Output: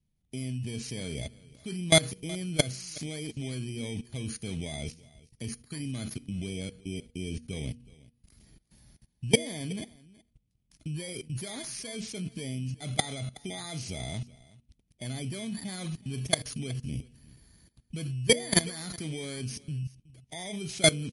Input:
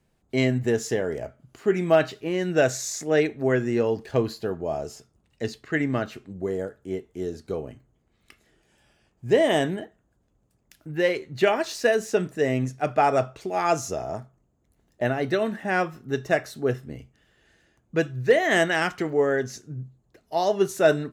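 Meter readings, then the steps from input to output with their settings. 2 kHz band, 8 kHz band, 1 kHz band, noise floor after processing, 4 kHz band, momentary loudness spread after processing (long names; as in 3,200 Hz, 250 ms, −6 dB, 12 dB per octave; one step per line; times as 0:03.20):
−8.5 dB, +3.5 dB, −15.5 dB, −75 dBFS, +4.0 dB, 15 LU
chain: samples in bit-reversed order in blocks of 16 samples
flat-topped bell 730 Hz −11.5 dB 2.6 octaves
output level in coarse steps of 22 dB
low-shelf EQ 210 Hz +6 dB
hum removal 238.6 Hz, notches 2
on a send: single-tap delay 371 ms −21.5 dB
on the sum: level +7.5 dB
MP3 48 kbit/s 44,100 Hz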